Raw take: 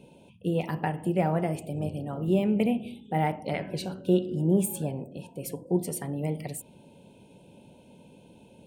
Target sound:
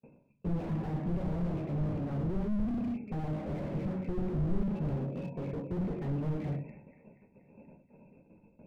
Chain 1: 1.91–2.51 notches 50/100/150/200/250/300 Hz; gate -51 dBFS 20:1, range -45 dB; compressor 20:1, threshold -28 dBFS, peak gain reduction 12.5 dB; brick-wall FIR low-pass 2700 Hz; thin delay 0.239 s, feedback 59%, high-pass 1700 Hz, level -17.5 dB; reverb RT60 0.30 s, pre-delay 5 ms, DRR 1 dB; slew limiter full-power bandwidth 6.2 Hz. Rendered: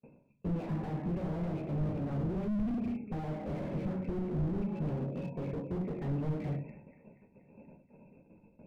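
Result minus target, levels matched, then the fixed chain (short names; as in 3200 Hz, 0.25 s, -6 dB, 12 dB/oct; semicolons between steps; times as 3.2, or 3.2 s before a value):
compressor: peak gain reduction +12.5 dB
1.91–2.51 notches 50/100/150/200/250/300 Hz; gate -51 dBFS 20:1, range -45 dB; brick-wall FIR low-pass 2700 Hz; thin delay 0.239 s, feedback 59%, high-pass 1700 Hz, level -17.5 dB; reverb RT60 0.30 s, pre-delay 5 ms, DRR 1 dB; slew limiter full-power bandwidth 6.2 Hz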